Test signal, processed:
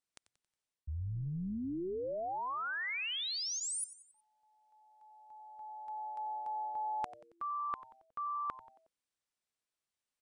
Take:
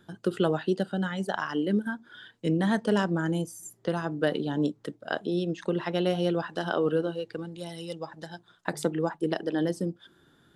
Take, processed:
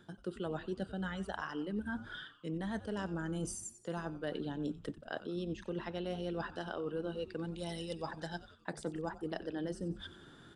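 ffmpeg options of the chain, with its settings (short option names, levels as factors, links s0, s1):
-filter_complex "[0:a]bandreject=f=6700:w=26,areverse,acompressor=threshold=0.00708:ratio=5,areverse,asplit=5[s0][s1][s2][s3][s4];[s1]adelay=91,afreqshift=-130,volume=0.168[s5];[s2]adelay=182,afreqshift=-260,volume=0.0776[s6];[s3]adelay=273,afreqshift=-390,volume=0.0355[s7];[s4]adelay=364,afreqshift=-520,volume=0.0164[s8];[s0][s5][s6][s7][s8]amix=inputs=5:normalize=0,aresample=22050,aresample=44100,volume=1.78"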